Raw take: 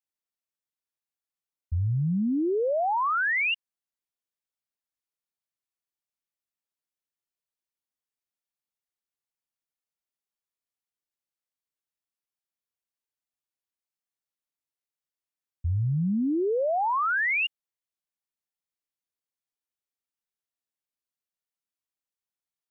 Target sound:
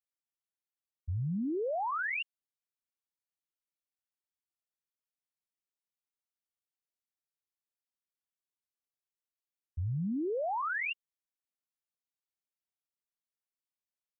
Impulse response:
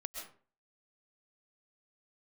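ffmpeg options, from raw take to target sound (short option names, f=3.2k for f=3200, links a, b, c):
-af "atempo=1.6,volume=-7.5dB"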